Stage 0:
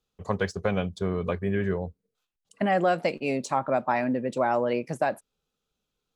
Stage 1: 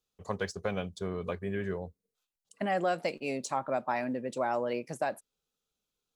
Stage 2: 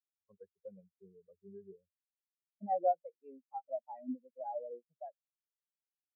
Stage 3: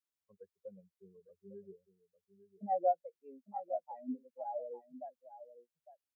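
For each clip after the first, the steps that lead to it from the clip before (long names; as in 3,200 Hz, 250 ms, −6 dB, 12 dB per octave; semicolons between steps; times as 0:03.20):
bass and treble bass −3 dB, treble +6 dB; level −6 dB
every bin expanded away from the loudest bin 4 to 1; level −3 dB
single-tap delay 854 ms −13 dB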